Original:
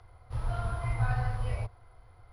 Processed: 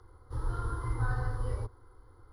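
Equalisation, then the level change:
parametric band 280 Hz +11 dB 1.3 octaves
phaser with its sweep stopped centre 670 Hz, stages 6
0.0 dB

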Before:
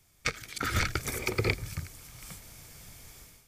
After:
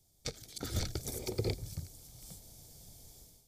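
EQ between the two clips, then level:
flat-topped bell 1,700 Hz −15 dB
−4.5 dB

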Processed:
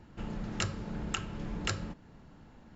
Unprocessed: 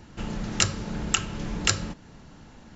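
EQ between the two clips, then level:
high-shelf EQ 3,200 Hz −10.5 dB
notch filter 5,900 Hz, Q 21
−6.0 dB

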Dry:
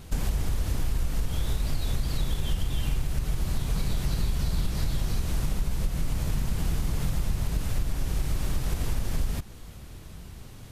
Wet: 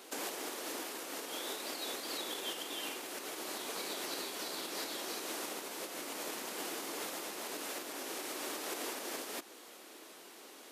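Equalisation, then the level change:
Butterworth high-pass 300 Hz 36 dB per octave
0.0 dB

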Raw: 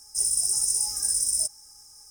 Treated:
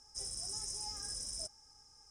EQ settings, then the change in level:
high-frequency loss of the air 140 metres
parametric band 12,000 Hz +4 dB 0.26 octaves
notch filter 4,200 Hz, Q 19
−2.5 dB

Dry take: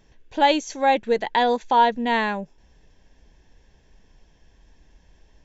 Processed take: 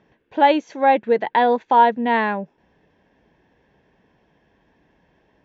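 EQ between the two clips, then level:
band-pass filter 150–2,200 Hz
+3.5 dB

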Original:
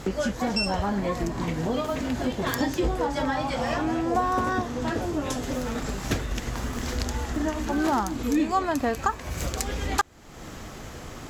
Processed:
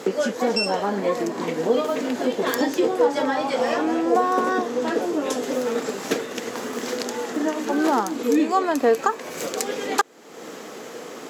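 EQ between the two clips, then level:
high-pass filter 220 Hz 24 dB per octave
parametric band 460 Hz +10 dB 0.36 octaves
+3.0 dB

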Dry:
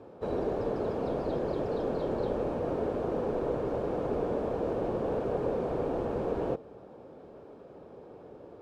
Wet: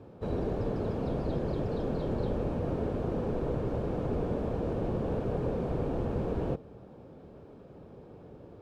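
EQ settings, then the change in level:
bass and treble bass +13 dB, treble −7 dB
high-shelf EQ 2,800 Hz +12 dB
−5.0 dB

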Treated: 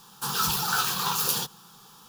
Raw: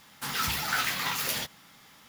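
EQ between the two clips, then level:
phaser with its sweep stopped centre 410 Hz, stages 8
+6.5 dB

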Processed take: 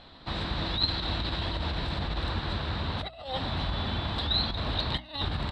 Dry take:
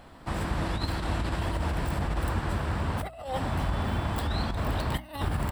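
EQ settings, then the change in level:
low-pass with resonance 3,900 Hz, resonance Q 8.8
−3.0 dB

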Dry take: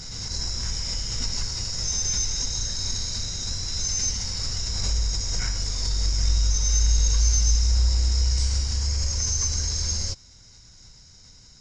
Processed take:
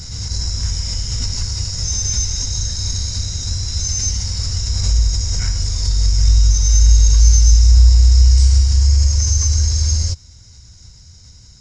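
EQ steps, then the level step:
parametric band 77 Hz +13.5 dB 1.7 octaves
high-shelf EQ 7,000 Hz +9 dB
+1.0 dB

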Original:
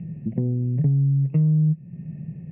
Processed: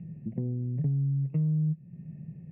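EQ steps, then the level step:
high-frequency loss of the air 140 metres
−8.0 dB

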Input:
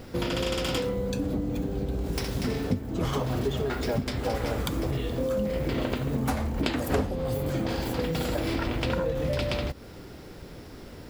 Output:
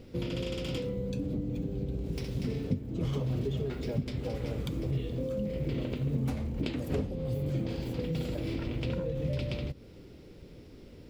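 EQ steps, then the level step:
dynamic equaliser 140 Hz, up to +7 dB, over −46 dBFS, Q 2.1
flat-topped bell 1,100 Hz −9 dB
high-shelf EQ 5,100 Hz −10.5 dB
−6.0 dB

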